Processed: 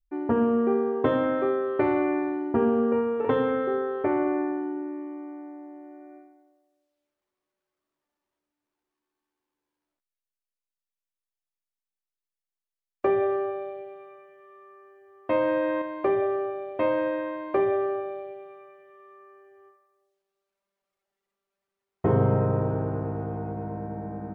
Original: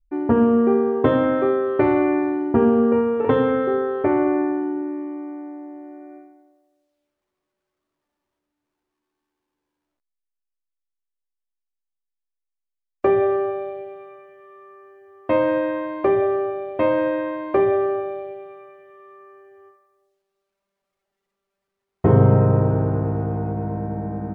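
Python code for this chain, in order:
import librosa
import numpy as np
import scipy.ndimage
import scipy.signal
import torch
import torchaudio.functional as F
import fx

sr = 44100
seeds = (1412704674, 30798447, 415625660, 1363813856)

y = fx.low_shelf(x, sr, hz=210.0, db=-6.0)
y = fx.env_flatten(y, sr, amount_pct=50, at=(15.38, 15.82))
y = y * librosa.db_to_amplitude(-4.5)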